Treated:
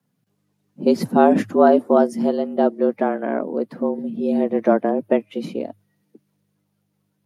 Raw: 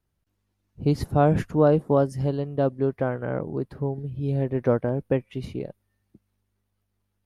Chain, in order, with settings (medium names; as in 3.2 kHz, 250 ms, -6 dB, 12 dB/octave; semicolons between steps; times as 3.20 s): coarse spectral quantiser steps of 15 dB; frequency shift +100 Hz; trim +5.5 dB